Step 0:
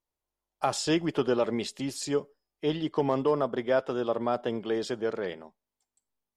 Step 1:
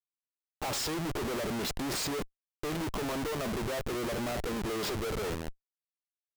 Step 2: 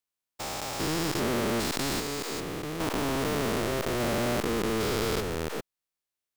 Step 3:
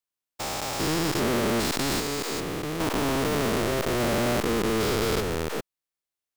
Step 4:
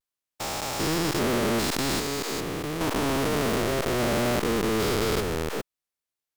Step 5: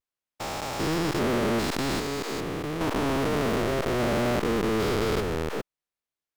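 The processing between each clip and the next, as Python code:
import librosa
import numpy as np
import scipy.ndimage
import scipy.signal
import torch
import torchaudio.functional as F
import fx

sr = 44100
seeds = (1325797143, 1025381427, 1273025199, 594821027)

y1 = fx.wow_flutter(x, sr, seeds[0], rate_hz=2.1, depth_cents=22.0)
y1 = fx.schmitt(y1, sr, flips_db=-41.5)
y1 = F.gain(torch.from_numpy(y1), -3.0).numpy()
y2 = fx.spec_steps(y1, sr, hold_ms=400)
y2 = F.gain(torch.from_numpy(y2), 8.0).numpy()
y3 = fx.leveller(y2, sr, passes=1)
y4 = fx.vibrato(y3, sr, rate_hz=0.34, depth_cents=26.0)
y5 = fx.high_shelf(y4, sr, hz=4500.0, db=-8.5)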